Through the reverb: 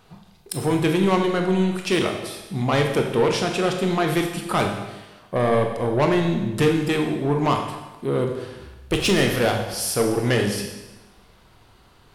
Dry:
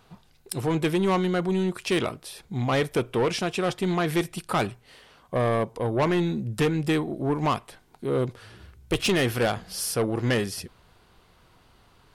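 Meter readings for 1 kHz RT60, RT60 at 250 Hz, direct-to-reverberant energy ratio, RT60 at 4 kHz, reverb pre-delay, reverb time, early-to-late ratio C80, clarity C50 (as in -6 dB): 1.1 s, 1.1 s, 3.0 dB, 1.1 s, 20 ms, 1.1 s, 7.5 dB, 5.5 dB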